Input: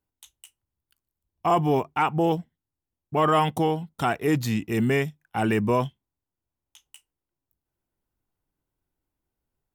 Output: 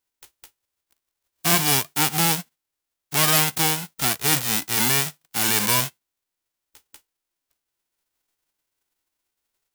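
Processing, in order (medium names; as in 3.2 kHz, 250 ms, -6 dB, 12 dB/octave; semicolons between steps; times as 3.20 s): formants flattened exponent 0.1; trim +2 dB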